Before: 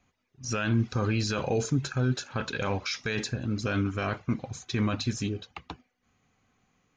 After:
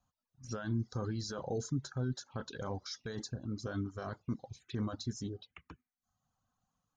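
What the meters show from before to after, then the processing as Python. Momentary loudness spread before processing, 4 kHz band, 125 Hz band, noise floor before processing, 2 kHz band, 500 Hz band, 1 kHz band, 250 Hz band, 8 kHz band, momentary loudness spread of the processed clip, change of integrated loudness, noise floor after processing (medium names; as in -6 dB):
9 LU, -11.0 dB, -9.5 dB, -77 dBFS, -16.0 dB, -9.5 dB, -11.0 dB, -9.0 dB, -9.5 dB, 10 LU, -10.0 dB, under -85 dBFS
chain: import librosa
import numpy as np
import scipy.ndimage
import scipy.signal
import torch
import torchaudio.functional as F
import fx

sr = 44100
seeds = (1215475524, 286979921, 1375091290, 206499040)

y = fx.env_phaser(x, sr, low_hz=370.0, high_hz=2500.0, full_db=-29.0)
y = fx.dereverb_blind(y, sr, rt60_s=0.7)
y = y * librosa.db_to_amplitude(-8.0)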